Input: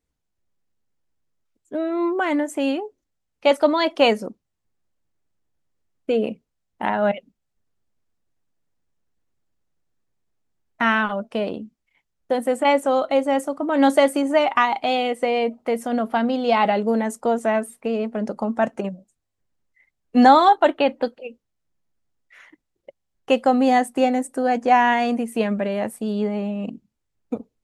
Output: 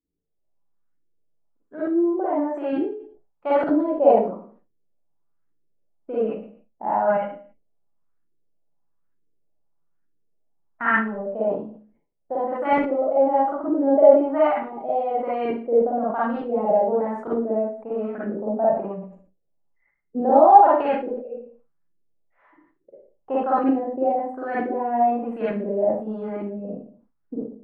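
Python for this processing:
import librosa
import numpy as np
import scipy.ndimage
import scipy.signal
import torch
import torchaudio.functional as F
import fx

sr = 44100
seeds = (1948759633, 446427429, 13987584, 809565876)

y = fx.filter_lfo_lowpass(x, sr, shape='saw_up', hz=1.1, low_hz=310.0, high_hz=1700.0, q=2.9)
y = fx.rev_schroeder(y, sr, rt60_s=0.37, comb_ms=38, drr_db=-8.0)
y = fx.sustainer(y, sr, db_per_s=100.0)
y = y * 10.0 ** (-13.0 / 20.0)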